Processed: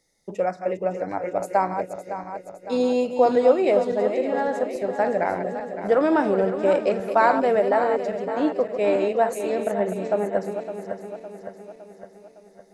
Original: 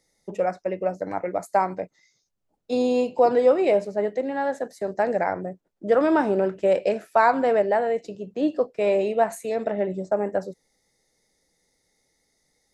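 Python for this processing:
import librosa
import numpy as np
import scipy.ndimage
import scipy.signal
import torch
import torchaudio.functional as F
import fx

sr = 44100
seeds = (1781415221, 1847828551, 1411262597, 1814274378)

y = fx.reverse_delay_fb(x, sr, ms=280, feedback_pct=72, wet_db=-8.5)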